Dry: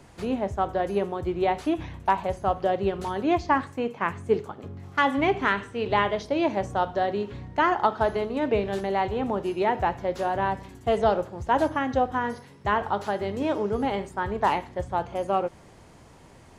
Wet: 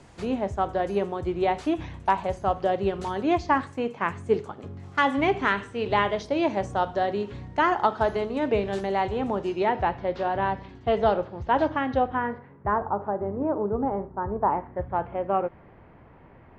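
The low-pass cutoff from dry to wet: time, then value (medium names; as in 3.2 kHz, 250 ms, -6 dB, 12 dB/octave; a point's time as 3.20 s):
low-pass 24 dB/octave
9.28 s 9.6 kHz
9.89 s 4.4 kHz
11.97 s 4.4 kHz
12.28 s 2.4 kHz
12.90 s 1.2 kHz
14.44 s 1.2 kHz
14.95 s 2.3 kHz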